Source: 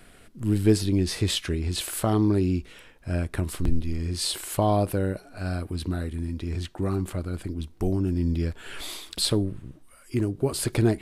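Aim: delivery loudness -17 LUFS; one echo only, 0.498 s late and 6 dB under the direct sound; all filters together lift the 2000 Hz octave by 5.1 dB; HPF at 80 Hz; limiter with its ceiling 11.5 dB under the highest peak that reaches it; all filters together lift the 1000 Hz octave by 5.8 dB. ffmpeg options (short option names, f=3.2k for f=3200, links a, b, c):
-af "highpass=80,equalizer=f=1k:t=o:g=7.5,equalizer=f=2k:t=o:g=4,alimiter=limit=-17dB:level=0:latency=1,aecho=1:1:498:0.501,volume=11.5dB"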